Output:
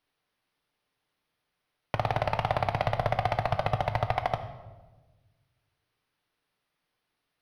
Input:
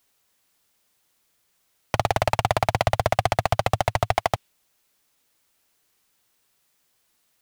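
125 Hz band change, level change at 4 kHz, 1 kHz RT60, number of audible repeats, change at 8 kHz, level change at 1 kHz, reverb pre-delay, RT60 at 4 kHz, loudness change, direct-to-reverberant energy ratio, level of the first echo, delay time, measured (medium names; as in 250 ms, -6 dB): -4.0 dB, -9.0 dB, 1.1 s, no echo, under -20 dB, -5.5 dB, 7 ms, 0.85 s, -5.5 dB, 7.0 dB, no echo, no echo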